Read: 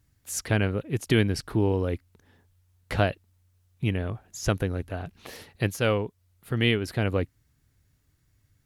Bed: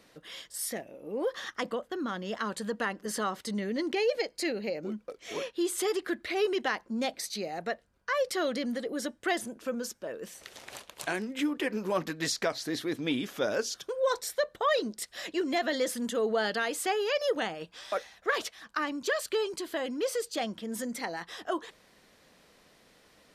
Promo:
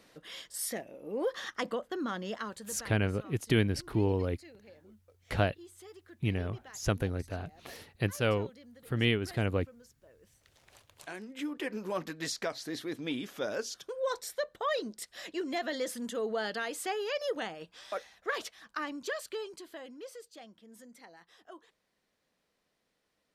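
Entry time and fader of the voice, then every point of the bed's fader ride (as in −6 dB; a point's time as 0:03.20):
2.40 s, −4.5 dB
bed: 0:02.25 −1 dB
0:03.13 −22 dB
0:10.15 −22 dB
0:11.63 −5 dB
0:18.95 −5 dB
0:20.43 −18.5 dB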